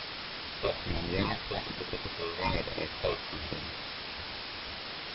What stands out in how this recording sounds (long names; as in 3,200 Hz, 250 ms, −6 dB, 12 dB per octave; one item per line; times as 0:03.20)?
aliases and images of a low sample rate 1,500 Hz, jitter 0%
phaser sweep stages 8, 1.2 Hz, lowest notch 240–1,600 Hz
a quantiser's noise floor 6 bits, dither triangular
MP3